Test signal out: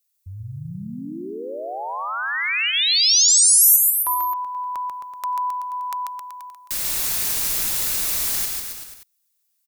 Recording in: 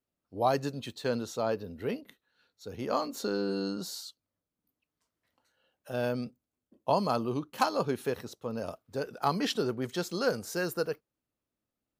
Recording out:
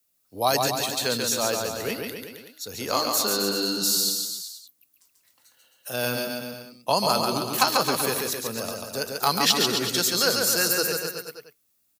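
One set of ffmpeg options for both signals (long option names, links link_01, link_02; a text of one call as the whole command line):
ffmpeg -i in.wav -filter_complex "[0:a]acrossover=split=170|5100[link_01][link_02][link_03];[link_02]bandreject=frequency=3100:width=23[link_04];[link_03]alimiter=level_in=11dB:limit=-24dB:level=0:latency=1:release=467,volume=-11dB[link_05];[link_01][link_04][link_05]amix=inputs=3:normalize=0,aecho=1:1:140|266|379.4|481.5|573.3:0.631|0.398|0.251|0.158|0.1,crystalizer=i=9.5:c=0" out.wav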